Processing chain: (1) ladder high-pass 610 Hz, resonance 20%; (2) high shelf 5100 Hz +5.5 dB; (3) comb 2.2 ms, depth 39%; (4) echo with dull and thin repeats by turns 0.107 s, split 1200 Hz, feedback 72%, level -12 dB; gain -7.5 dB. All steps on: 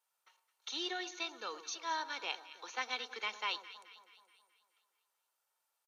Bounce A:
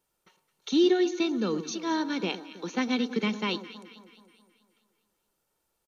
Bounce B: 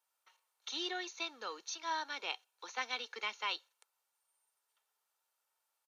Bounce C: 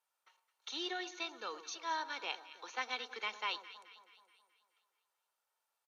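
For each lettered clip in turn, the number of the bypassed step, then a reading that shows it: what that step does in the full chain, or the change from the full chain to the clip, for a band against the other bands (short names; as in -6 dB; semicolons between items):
1, 250 Hz band +21.5 dB; 4, momentary loudness spread change -7 LU; 2, 8 kHz band -3.0 dB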